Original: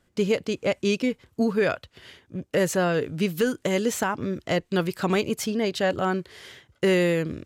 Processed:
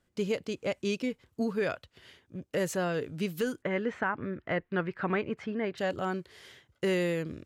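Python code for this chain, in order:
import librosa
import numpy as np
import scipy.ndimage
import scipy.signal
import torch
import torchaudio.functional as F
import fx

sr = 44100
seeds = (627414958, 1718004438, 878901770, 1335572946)

y = fx.lowpass_res(x, sr, hz=1800.0, q=2.1, at=(3.61, 5.77), fade=0.02)
y = y * 10.0 ** (-7.5 / 20.0)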